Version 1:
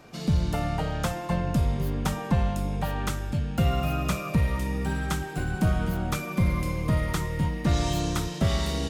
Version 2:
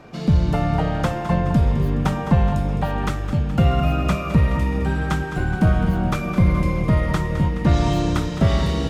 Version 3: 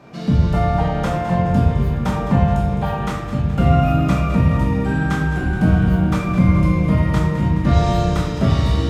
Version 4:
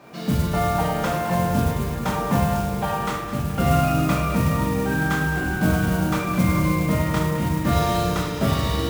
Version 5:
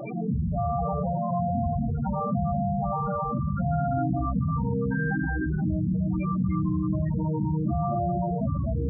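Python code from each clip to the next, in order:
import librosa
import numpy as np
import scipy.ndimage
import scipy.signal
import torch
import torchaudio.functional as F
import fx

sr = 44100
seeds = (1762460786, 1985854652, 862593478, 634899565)

y1 = fx.lowpass(x, sr, hz=2200.0, slope=6)
y1 = fx.echo_feedback(y1, sr, ms=211, feedback_pct=55, wet_db=-11.5)
y1 = F.gain(torch.from_numpy(y1), 7.0).numpy()
y2 = scipy.signal.sosfilt(scipy.signal.butter(2, 59.0, 'highpass', fs=sr, output='sos'), y1)
y2 = fx.room_shoebox(y2, sr, seeds[0], volume_m3=180.0, walls='mixed', distance_m=1.2)
y2 = F.gain(torch.from_numpy(y2), -3.0).numpy()
y3 = fx.low_shelf(y2, sr, hz=190.0, db=-10.5)
y3 = fx.mod_noise(y3, sr, seeds[1], snr_db=18)
y3 = fx.room_flutter(y3, sr, wall_m=7.7, rt60_s=0.22)
y4 = y3 + 10.0 ** (-5.0 / 20.0) * np.pad(y3, (int(260 * sr / 1000.0), 0))[:len(y3)]
y4 = fx.spec_topn(y4, sr, count=8)
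y4 = fx.env_flatten(y4, sr, amount_pct=70)
y4 = F.gain(torch.from_numpy(y4), -8.5).numpy()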